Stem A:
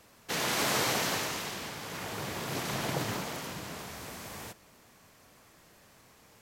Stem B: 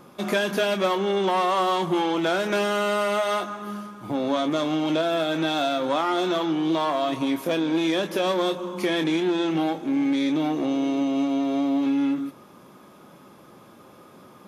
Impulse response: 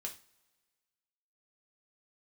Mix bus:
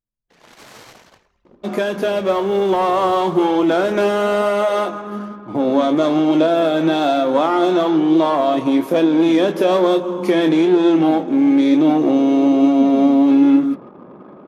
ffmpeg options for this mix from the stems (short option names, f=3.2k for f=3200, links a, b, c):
-filter_complex "[0:a]asubboost=boost=11.5:cutoff=72,volume=-8.5dB,asplit=2[a][b];[b]volume=-9dB[c];[1:a]equalizer=f=410:w=0.38:g=9.5,dynaudnorm=f=750:g=3:m=11.5dB,adelay=1450,volume=0.5dB[d];[2:a]atrim=start_sample=2205[e];[c][e]afir=irnorm=-1:irlink=0[f];[a][d][f]amix=inputs=3:normalize=0,anlmdn=3.98,flanger=delay=2.8:depth=9.7:regen=85:speed=1.1:shape=sinusoidal"